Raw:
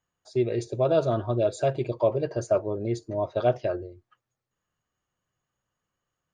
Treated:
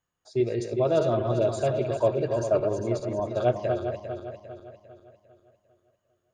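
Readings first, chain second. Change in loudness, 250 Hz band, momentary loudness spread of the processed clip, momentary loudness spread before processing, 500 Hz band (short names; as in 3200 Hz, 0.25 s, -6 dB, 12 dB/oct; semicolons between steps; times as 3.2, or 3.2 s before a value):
0.0 dB, +0.5 dB, 13 LU, 7 LU, +0.5 dB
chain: regenerating reverse delay 0.2 s, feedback 65%, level -6 dB; gain -1 dB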